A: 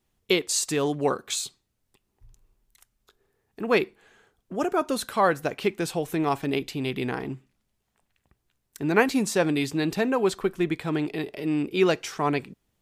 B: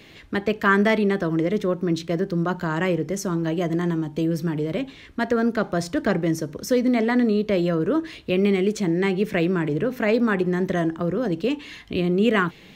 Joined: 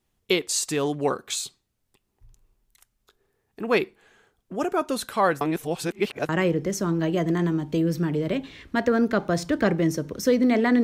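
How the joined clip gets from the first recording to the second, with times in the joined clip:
A
5.41–6.29 reverse
6.29 switch to B from 2.73 s

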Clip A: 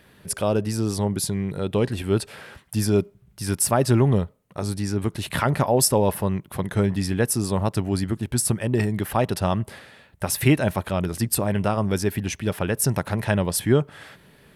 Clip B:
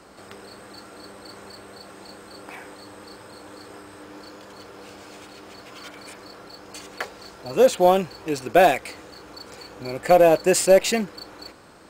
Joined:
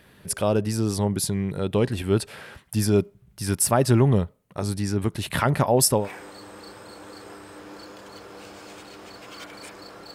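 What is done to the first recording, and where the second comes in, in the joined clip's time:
clip A
6.01 switch to clip B from 2.45 s, crossfade 0.16 s

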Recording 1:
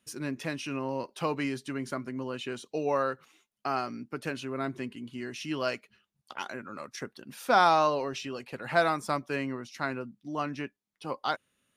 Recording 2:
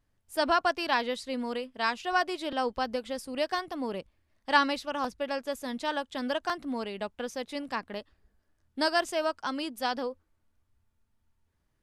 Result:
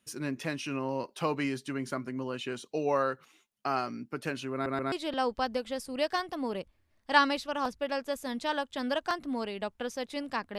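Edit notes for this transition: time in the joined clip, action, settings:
recording 1
4.53 stutter in place 0.13 s, 3 plays
4.92 switch to recording 2 from 2.31 s

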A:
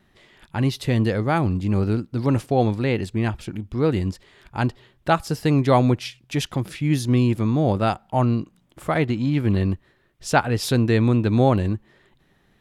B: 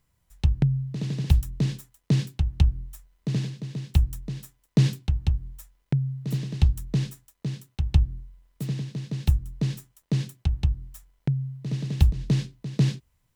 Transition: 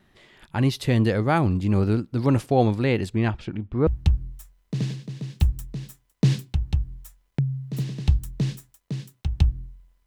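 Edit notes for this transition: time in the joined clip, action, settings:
A
3.15–3.87 LPF 7200 Hz -> 1600 Hz
3.87 switch to B from 2.41 s

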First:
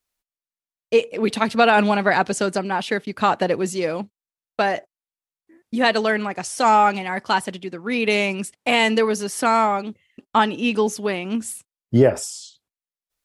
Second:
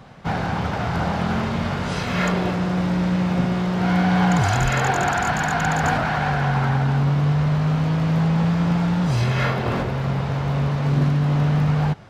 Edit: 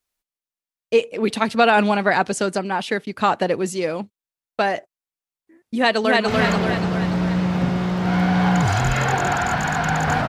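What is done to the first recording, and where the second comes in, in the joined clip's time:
first
5.75–6.28 echo throw 0.29 s, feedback 55%, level -1.5 dB
6.28 switch to second from 2.04 s

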